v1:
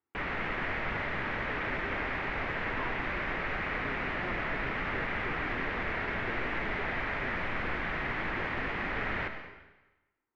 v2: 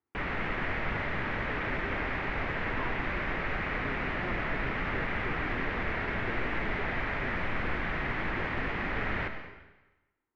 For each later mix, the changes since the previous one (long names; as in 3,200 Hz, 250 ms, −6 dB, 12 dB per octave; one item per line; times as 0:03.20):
master: add low-shelf EQ 270 Hz +4.5 dB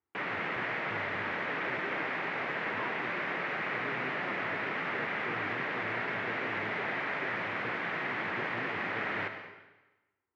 background: add high-pass filter 170 Hz 24 dB per octave
master: add parametric band 230 Hz −5.5 dB 0.95 octaves